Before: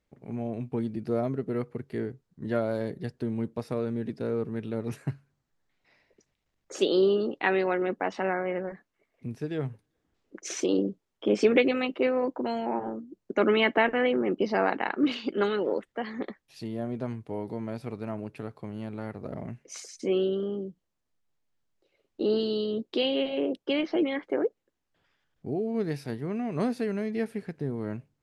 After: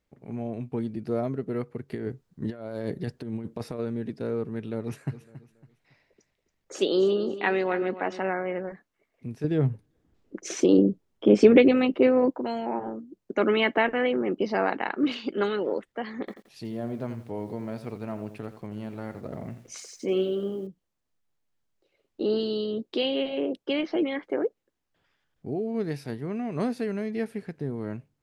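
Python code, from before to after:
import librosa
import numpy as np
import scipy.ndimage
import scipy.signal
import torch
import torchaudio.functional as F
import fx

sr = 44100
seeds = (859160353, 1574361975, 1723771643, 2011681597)

y = fx.over_compress(x, sr, threshold_db=-33.0, ratio=-0.5, at=(1.88, 3.78), fade=0.02)
y = fx.echo_feedback(y, sr, ms=278, feedback_pct=33, wet_db=-14, at=(5.11, 8.18), fade=0.02)
y = fx.low_shelf(y, sr, hz=480.0, db=10.5, at=(9.44, 12.31))
y = fx.echo_crushed(y, sr, ms=86, feedback_pct=35, bits=9, wet_db=-11, at=(16.19, 20.67))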